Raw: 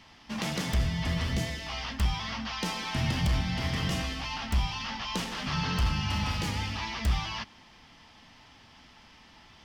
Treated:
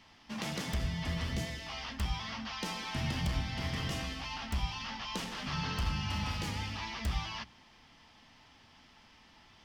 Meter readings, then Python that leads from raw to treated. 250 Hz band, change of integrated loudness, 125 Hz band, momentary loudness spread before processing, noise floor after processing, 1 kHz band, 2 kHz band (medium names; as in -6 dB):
-5.5 dB, -5.5 dB, -6.0 dB, 6 LU, -61 dBFS, -5.0 dB, -5.0 dB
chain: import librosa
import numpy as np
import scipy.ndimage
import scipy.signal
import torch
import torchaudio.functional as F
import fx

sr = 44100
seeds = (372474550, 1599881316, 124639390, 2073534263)

y = fx.hum_notches(x, sr, base_hz=60, count=3)
y = F.gain(torch.from_numpy(y), -5.0).numpy()